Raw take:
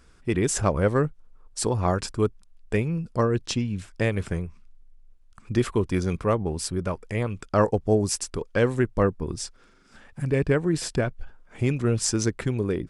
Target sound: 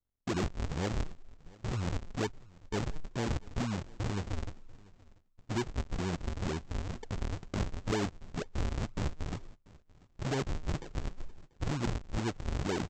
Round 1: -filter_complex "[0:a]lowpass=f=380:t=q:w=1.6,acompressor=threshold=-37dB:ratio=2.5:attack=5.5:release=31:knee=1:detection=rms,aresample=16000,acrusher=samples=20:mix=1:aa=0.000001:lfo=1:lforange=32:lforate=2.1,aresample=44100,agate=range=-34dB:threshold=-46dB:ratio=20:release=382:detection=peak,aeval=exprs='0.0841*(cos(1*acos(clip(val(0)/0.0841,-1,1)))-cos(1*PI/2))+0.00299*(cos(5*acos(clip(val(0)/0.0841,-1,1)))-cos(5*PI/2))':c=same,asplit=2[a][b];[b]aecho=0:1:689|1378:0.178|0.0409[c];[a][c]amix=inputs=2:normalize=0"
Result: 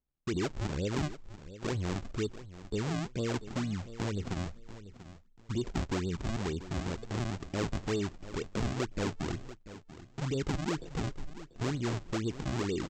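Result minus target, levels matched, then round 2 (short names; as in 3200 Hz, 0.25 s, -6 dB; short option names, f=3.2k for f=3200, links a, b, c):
decimation with a swept rate: distortion -9 dB; echo-to-direct +9 dB
-filter_complex "[0:a]lowpass=f=380:t=q:w=1.6,acompressor=threshold=-37dB:ratio=2.5:attack=5.5:release=31:knee=1:detection=rms,aresample=16000,acrusher=samples=58:mix=1:aa=0.000001:lfo=1:lforange=92.8:lforate=2.1,aresample=44100,agate=range=-34dB:threshold=-46dB:ratio=20:release=382:detection=peak,aeval=exprs='0.0841*(cos(1*acos(clip(val(0)/0.0841,-1,1)))-cos(1*PI/2))+0.00299*(cos(5*acos(clip(val(0)/0.0841,-1,1)))-cos(5*PI/2))':c=same,asplit=2[a][b];[b]aecho=0:1:689|1378:0.0631|0.0145[c];[a][c]amix=inputs=2:normalize=0"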